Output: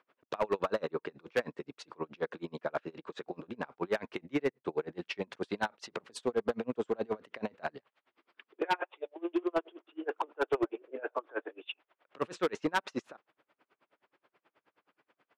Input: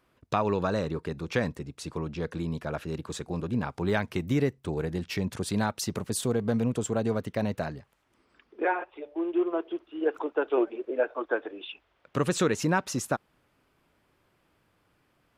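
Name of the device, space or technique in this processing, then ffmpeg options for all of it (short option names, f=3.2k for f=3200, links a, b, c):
helicopter radio: -filter_complex "[0:a]highpass=380,lowpass=3k,aeval=exprs='val(0)*pow(10,-33*(0.5-0.5*cos(2*PI*9.4*n/s))/20)':c=same,asoftclip=type=hard:threshold=-28dB,asettb=1/sr,asplit=3[a][b][c];[a]atrim=end=7.744[d];[b]atrim=start=7.74:end=9.64,asetpts=PTS-STARTPTS,afade=t=in:d=0.004:c=qsin,afade=t=out:st=1.896:d=0.004:c=qsin,equalizer=f=3.6k:w=1.3:g=5.5[e];[c]atrim=start=9.636[f];[d][e]acrossfade=d=0.004:c1=hsin:c2=qsin[g];[g][f]acrossfade=d=0.004:c1=qsin:c2=hsin,volume=5.5dB"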